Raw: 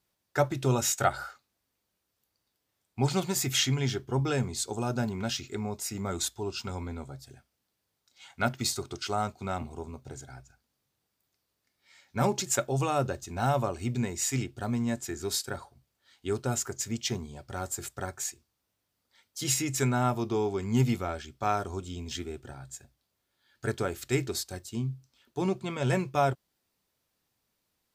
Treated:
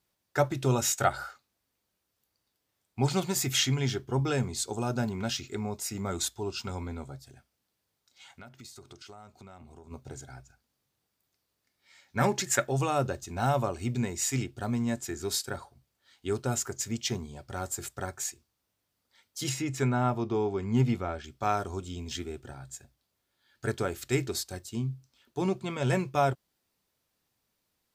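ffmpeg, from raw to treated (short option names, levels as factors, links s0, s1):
-filter_complex "[0:a]asplit=3[s0][s1][s2];[s0]afade=t=out:st=7.18:d=0.02[s3];[s1]acompressor=threshold=0.00447:ratio=5:attack=3.2:release=140:knee=1:detection=peak,afade=t=in:st=7.18:d=0.02,afade=t=out:st=9.9:d=0.02[s4];[s2]afade=t=in:st=9.9:d=0.02[s5];[s3][s4][s5]amix=inputs=3:normalize=0,asettb=1/sr,asplit=3[s6][s7][s8];[s6]atrim=end=12.184[s9];[s7]atrim=start=12.18:end=12.8,asetpts=PTS-STARTPTS,afade=t=in:d=0.004:c=qsin,afade=t=out:st=0.616:d=0.004:c=qsin,equalizer=f=1800:t=o:w=0.52:g=11[s10];[s8]atrim=start=12.796[s11];[s9][s10]acrossfade=d=0.004:c1=hsin:c2=qsin[s12];[s12][s11]acrossfade=d=0.004:c1=qsin:c2=hsin,asettb=1/sr,asplit=3[s13][s14][s15];[s13]atrim=end=19.494[s16];[s14]atrim=start=19.49:end=21.24,asetpts=PTS-STARTPTS,afade=t=in:d=0.004:c=qsin,afade=t=out:st=1.746:d=0.004:c=qsin,lowpass=f=2500:p=1[s17];[s15]atrim=start=21.236[s18];[s16][s17]acrossfade=d=0.004:c1=hsin:c2=qsin[s19];[s19][s18]acrossfade=d=0.004:c1=qsin:c2=hsin"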